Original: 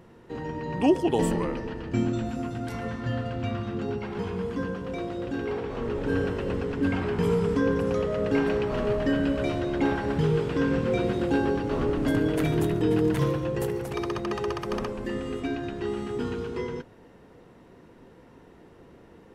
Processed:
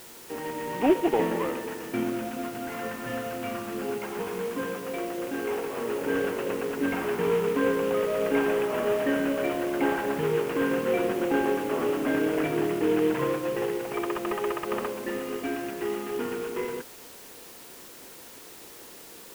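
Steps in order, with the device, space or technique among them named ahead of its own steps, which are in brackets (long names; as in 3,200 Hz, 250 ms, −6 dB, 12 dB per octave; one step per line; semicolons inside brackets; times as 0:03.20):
army field radio (band-pass filter 310–3,400 Hz; variable-slope delta modulation 16 kbit/s; white noise bed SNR 19 dB)
level +2.5 dB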